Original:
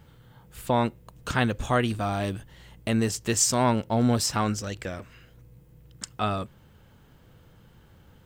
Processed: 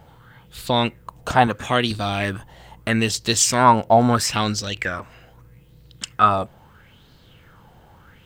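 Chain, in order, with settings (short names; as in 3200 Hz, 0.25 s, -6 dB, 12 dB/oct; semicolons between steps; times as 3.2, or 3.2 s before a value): 1.47–1.91 HPF 120 Hz; LFO bell 0.77 Hz 700–4300 Hz +15 dB; gain +3 dB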